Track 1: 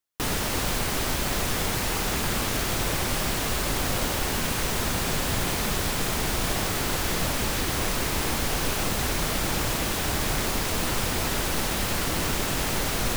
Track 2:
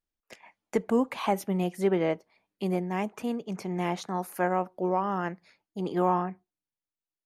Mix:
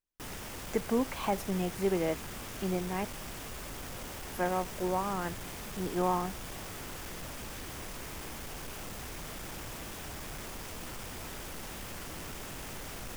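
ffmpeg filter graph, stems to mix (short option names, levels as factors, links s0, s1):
-filter_complex "[0:a]equalizer=f=4100:w=4.8:g=-5,volume=15.8,asoftclip=hard,volume=0.0631,volume=0.2[s0];[1:a]volume=0.596,asplit=3[s1][s2][s3];[s1]atrim=end=3.05,asetpts=PTS-STARTPTS,afade=t=out:st=3.046:d=0.004:c=hsin[s4];[s2]atrim=start=3.05:end=4.32,asetpts=PTS-STARTPTS,volume=0[s5];[s3]atrim=start=4.32,asetpts=PTS-STARTPTS,afade=t=in:d=0.004:c=hsin[s6];[s4][s5][s6]concat=n=3:v=0:a=1[s7];[s0][s7]amix=inputs=2:normalize=0"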